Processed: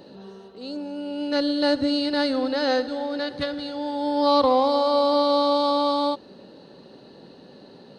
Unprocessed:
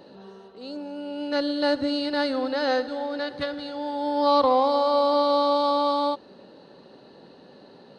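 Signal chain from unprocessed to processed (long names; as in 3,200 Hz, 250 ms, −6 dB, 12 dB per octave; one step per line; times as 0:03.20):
parametric band 1,100 Hz −5.5 dB 2.8 octaves
level +5 dB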